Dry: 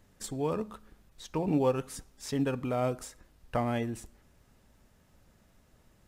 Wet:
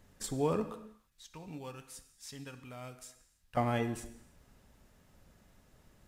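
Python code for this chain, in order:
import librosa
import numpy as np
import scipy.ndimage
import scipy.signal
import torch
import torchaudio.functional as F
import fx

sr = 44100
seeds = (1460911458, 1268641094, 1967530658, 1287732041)

y = fx.tone_stack(x, sr, knobs='5-5-5', at=(0.74, 3.57))
y = fx.rev_gated(y, sr, seeds[0], gate_ms=350, shape='falling', drr_db=9.5)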